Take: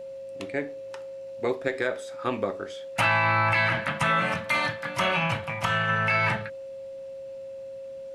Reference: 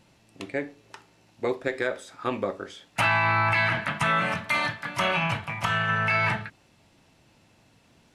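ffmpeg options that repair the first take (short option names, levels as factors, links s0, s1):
-af "bandreject=f=540:w=30"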